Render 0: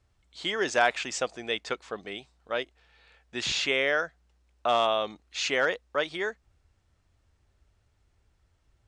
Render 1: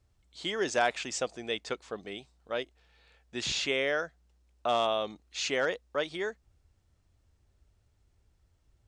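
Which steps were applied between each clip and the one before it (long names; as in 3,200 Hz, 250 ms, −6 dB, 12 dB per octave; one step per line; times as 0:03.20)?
parametric band 1,600 Hz −5.5 dB 2.7 octaves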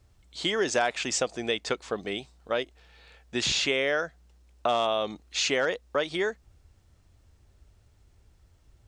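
downward compressor 2.5 to 1, threshold −33 dBFS, peak gain reduction 8.5 dB
level +8.5 dB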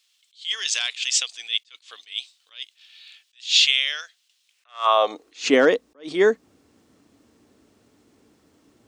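high-pass filter sweep 3,200 Hz → 240 Hz, 0:04.47–0:05.43
hollow resonant body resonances 290/450/1,100 Hz, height 6 dB
level that may rise only so fast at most 220 dB per second
level +6.5 dB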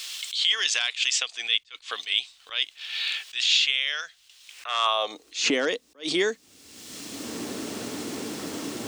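multiband upward and downward compressor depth 100%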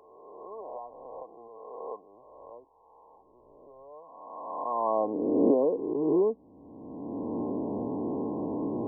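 peak hold with a rise ahead of every peak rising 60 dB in 1.83 s
linear-phase brick-wall low-pass 1,100 Hz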